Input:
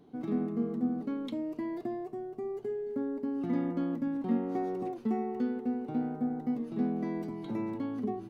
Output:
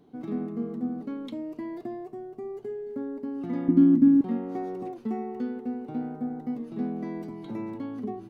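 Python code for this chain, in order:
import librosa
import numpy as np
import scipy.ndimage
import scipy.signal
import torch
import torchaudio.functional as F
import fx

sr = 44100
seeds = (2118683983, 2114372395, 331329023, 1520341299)

y = fx.low_shelf_res(x, sr, hz=390.0, db=9.0, q=3.0, at=(3.68, 4.21))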